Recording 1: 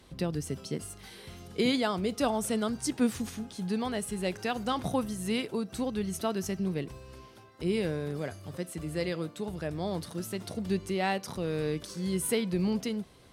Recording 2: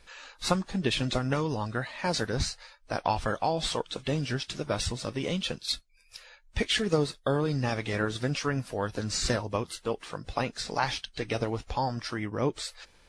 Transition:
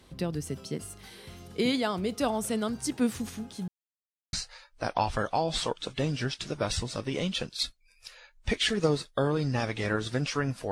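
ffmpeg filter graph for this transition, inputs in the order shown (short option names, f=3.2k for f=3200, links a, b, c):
-filter_complex "[0:a]apad=whole_dur=10.71,atrim=end=10.71,asplit=2[a][b];[a]atrim=end=3.68,asetpts=PTS-STARTPTS,afade=t=out:st=3.676:d=0.004:c=hsin[c];[b]atrim=start=3.68:end=4.33,asetpts=PTS-STARTPTS,volume=0[d];[1:a]atrim=start=2.42:end=8.8,asetpts=PTS-STARTPTS,afade=t=in:d=0.004:c=hsin[e];[c][d][e]concat=n=3:v=0:a=1"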